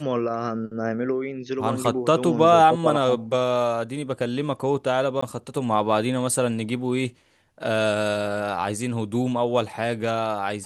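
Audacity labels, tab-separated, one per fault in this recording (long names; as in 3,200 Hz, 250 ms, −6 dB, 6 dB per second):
5.210000	5.220000	drop-out 15 ms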